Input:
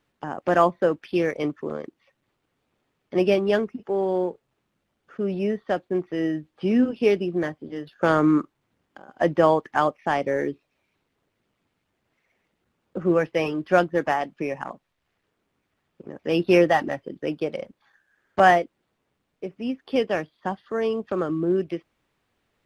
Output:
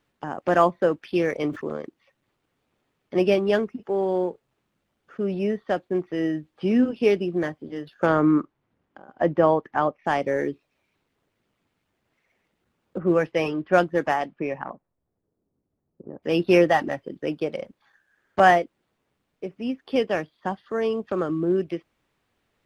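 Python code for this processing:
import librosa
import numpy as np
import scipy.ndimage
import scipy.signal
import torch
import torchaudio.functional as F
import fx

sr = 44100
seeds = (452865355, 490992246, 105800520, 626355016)

y = fx.sustainer(x, sr, db_per_s=150.0, at=(1.04, 1.69))
y = fx.lowpass(y, sr, hz=fx.line((8.05, 2100.0), (10.04, 1300.0)), slope=6, at=(8.05, 10.04), fade=0.02)
y = fx.env_lowpass(y, sr, base_hz=460.0, full_db=-19.0, at=(12.98, 16.22), fade=0.02)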